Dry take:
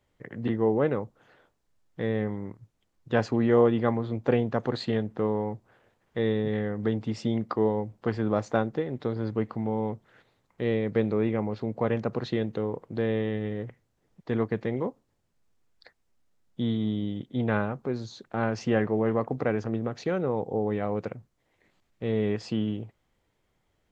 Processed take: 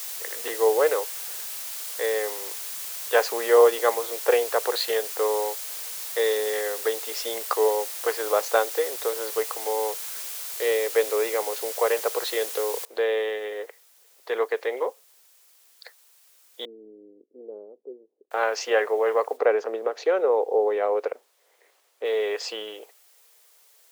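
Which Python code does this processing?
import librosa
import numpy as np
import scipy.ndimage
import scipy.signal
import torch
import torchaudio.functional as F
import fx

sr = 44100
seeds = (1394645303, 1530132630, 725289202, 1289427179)

y = fx.noise_floor_step(x, sr, seeds[0], at_s=12.85, before_db=-47, after_db=-70, tilt_db=0.0)
y = fx.cheby2_lowpass(y, sr, hz=2000.0, order=4, stop_db=80, at=(16.65, 18.31))
y = fx.tilt_eq(y, sr, slope=-3.0, at=(19.36, 22.04), fade=0.02)
y = scipy.signal.sosfilt(scipy.signal.ellip(4, 1.0, 70, 440.0, 'highpass', fs=sr, output='sos'), y)
y = fx.high_shelf(y, sr, hz=3400.0, db=8.5)
y = F.gain(torch.from_numpy(y), 6.0).numpy()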